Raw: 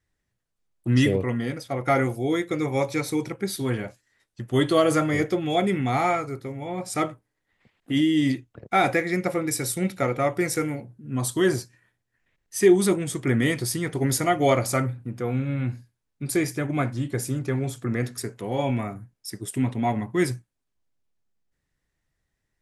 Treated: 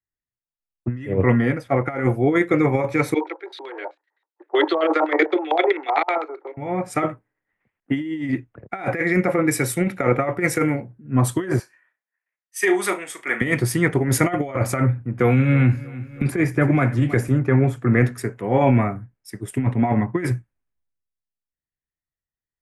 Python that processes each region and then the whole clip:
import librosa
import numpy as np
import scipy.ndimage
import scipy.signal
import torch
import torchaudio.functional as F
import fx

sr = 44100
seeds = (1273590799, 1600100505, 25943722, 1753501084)

y = fx.chain(x, sr, fx.filter_lfo_lowpass(shape='square', hz=7.8, low_hz=890.0, high_hz=3900.0, q=7.4),
    fx.level_steps(step_db=11),
    fx.steep_highpass(hz=310.0, slope=96), at=(3.14, 6.57))
y = fx.chain(y, sr, fx.highpass(hz=730.0, slope=12),
    fx.room_flutter(wall_m=6.2, rt60_s=0.21), at=(11.59, 13.41))
y = fx.chain(y, sr, fx.echo_feedback(ms=318, feedback_pct=38, wet_db=-20.5),
    fx.band_squash(depth_pct=100), at=(15.19, 17.28))
y = fx.high_shelf_res(y, sr, hz=2900.0, db=-11.0, q=1.5)
y = fx.over_compress(y, sr, threshold_db=-24.0, ratio=-0.5)
y = fx.band_widen(y, sr, depth_pct=70)
y = F.gain(torch.from_numpy(y), 6.5).numpy()